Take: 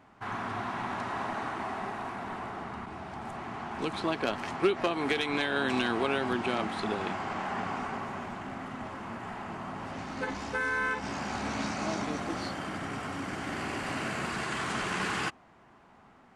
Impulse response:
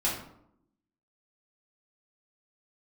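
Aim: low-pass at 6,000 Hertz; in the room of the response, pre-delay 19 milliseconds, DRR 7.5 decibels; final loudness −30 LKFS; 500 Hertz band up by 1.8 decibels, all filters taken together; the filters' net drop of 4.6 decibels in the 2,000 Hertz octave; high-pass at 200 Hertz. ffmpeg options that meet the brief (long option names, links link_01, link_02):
-filter_complex "[0:a]highpass=200,lowpass=6000,equalizer=frequency=500:width_type=o:gain=3,equalizer=frequency=2000:width_type=o:gain=-6.5,asplit=2[link_01][link_02];[1:a]atrim=start_sample=2205,adelay=19[link_03];[link_02][link_03]afir=irnorm=-1:irlink=0,volume=-16dB[link_04];[link_01][link_04]amix=inputs=2:normalize=0,volume=3.5dB"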